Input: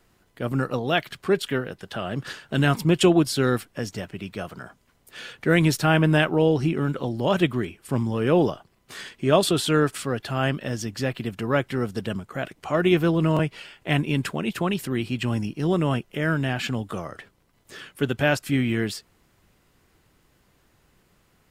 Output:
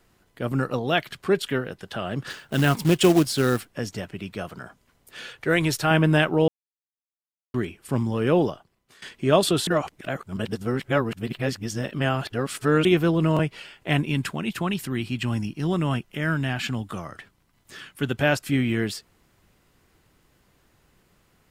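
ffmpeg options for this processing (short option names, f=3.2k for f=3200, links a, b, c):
-filter_complex "[0:a]asettb=1/sr,asplit=3[a][b][c];[a]atrim=end=2.304[d];[b]atrim=start=2.3:end=3.68,asetpts=PTS-STARTPTS,afade=t=in:d=0.004:c=qsin,afade=t=out:st=1.376:d=0.004:c=qsin,acrusher=bits=4:mode=log:mix=0:aa=0.000001[e];[c]atrim=start=3.676[f];[d][e]acrossfade=d=0.004:c1=hsin:c2=qsin[g];[g][f]acrossfade=d=0.004:c1=qsin:c2=hsin,asettb=1/sr,asplit=3[h][i][j];[h]atrim=end=5.294[k];[i]atrim=start=5.29:end=5.91,asetpts=PTS-STARTPTS,afade=t=in:d=0.004:c=qsin,afade=t=out:st=0.616:d=0.004:c=qsin,equalizer=f=210:w=1.8:g=-10.5[l];[j]atrim=start=5.906[m];[k][l]acrossfade=d=0.004:c1=hsin:c2=qsin[n];[n][m]acrossfade=d=0.004:c1=qsin:c2=hsin,asettb=1/sr,asplit=3[o][p][q];[o]atrim=end=14.064[r];[p]atrim=start=14.06:end=18.11,asetpts=PTS-STARTPTS,afade=t=in:d=0.004:c=qsin,afade=t=out:st=4.046:d=0.004:c=qsin,equalizer=f=480:w=1.5:g=-6.5[s];[q]atrim=start=18.106[t];[r][s]acrossfade=d=0.004:c1=hsin:c2=qsin[u];[u][t]acrossfade=d=0.004:c1=qsin:c2=hsin,asplit=6[v][w][x][y][z][aa];[v]atrim=end=6.48,asetpts=PTS-STARTPTS,afade=t=out:st=6.476:d=0.004:c=hsin[ab];[w]atrim=start=6.48:end=7.54,asetpts=PTS-STARTPTS,volume=0[ac];[x]atrim=start=7.54:end=9.02,asetpts=PTS-STARTPTS,afade=t=in:d=0.004:c=hsin,afade=t=out:st=0.74:d=0.74:silence=0.105925[ad];[y]atrim=start=9.02:end=9.672,asetpts=PTS-STARTPTS,afade=t=in:d=0.004:c=hsin:silence=0.105925[ae];[z]atrim=start=9.668:end=12.852,asetpts=PTS-STARTPTS,areverse[af];[aa]atrim=start=12.848[ag];[ab][ac][ad][ae]concat=n=4:v=0:a=1[ah];[ah][af]acrossfade=d=0.004:c1=hsin:c2=hsin[ai];[ai][ag]acrossfade=d=0.004:c1=hsin:c2=hsin"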